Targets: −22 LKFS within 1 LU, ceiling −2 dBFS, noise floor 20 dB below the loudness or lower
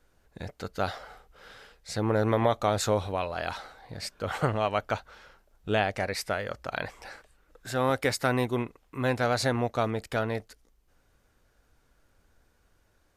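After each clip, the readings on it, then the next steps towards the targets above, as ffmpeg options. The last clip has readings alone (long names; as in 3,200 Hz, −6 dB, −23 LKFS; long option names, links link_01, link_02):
integrated loudness −29.5 LKFS; sample peak −10.0 dBFS; target loudness −22.0 LKFS
→ -af "volume=7.5dB"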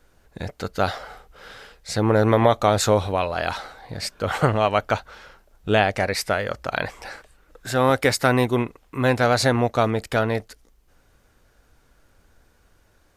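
integrated loudness −22.0 LKFS; sample peak −2.5 dBFS; background noise floor −60 dBFS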